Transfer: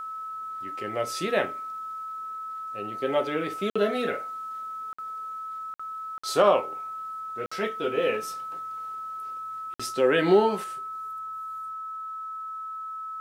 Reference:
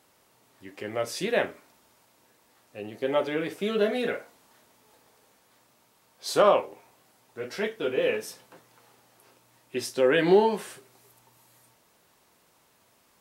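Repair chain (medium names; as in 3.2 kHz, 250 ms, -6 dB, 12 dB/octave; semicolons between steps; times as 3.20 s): band-stop 1.3 kHz, Q 30; interpolate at 3.70/4.93/5.74/6.18/7.46/9.74 s, 55 ms; trim 0 dB, from 10.64 s +4.5 dB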